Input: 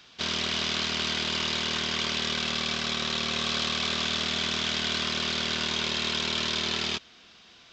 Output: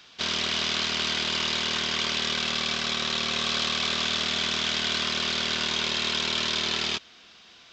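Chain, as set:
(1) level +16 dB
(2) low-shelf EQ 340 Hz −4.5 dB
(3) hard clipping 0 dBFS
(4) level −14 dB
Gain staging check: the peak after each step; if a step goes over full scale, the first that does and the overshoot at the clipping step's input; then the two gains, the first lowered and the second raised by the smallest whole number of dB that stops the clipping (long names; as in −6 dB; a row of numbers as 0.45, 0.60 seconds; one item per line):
−2.0, −2.0, −2.0, −16.0 dBFS
no step passes full scale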